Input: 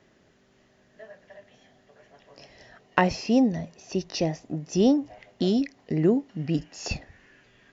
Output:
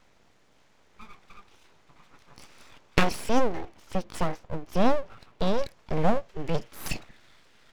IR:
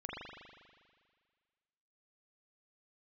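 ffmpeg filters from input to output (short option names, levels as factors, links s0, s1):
-filter_complex "[0:a]asettb=1/sr,asplit=3[s0][s1][s2];[s0]atrim=end=3.414[s3];[s1]atrim=start=3.41:end=5.59,asetpts=PTS-STARTPTS,afade=t=in:d=0.004:c=qsin,afade=t=out:st=2.176:d=0.004:c=qsin,equalizer=f=6700:w=0.93:g=-11[s4];[s2]atrim=start=5.586[s5];[s3][s4]acrossfade=d=0.004:c1=hsin:c2=qsin[s6];[s6][s5]acrossfade=d=0.004:c1=qsin:c2=hsin,aeval=exprs='abs(val(0))':c=same,volume=1.19"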